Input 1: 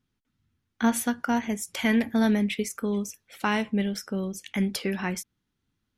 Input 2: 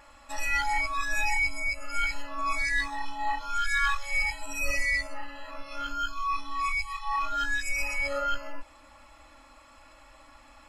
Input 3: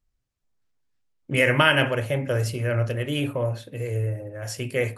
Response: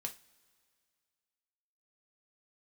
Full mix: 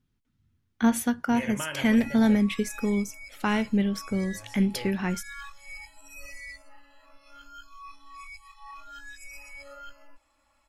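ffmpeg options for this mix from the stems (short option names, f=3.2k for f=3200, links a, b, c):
-filter_complex "[0:a]lowshelf=f=220:g=8,volume=-2dB[a];[1:a]crystalizer=i=1:c=0,adelay=1550,volume=-16dB[b];[2:a]volume=-16.5dB,asplit=3[c][d][e];[c]atrim=end=2.37,asetpts=PTS-STARTPTS,afade=t=out:st=2.366:d=0.004:c=hsin[f];[d]atrim=start=2.37:end=4.11,asetpts=PTS-STARTPTS,volume=0[g];[e]atrim=start=4.11,asetpts=PTS-STARTPTS,afade=t=in:d=0.004:c=hsin[h];[f][g][h]concat=n=3:v=0:a=1[i];[a][b][i]amix=inputs=3:normalize=0"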